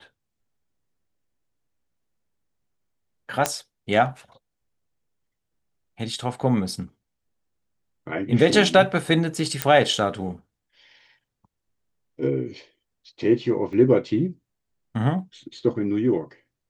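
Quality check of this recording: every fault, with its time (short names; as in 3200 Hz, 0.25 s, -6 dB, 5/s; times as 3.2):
3.46 pop -5 dBFS
9.62 pop -4 dBFS
13.73 gap 3.5 ms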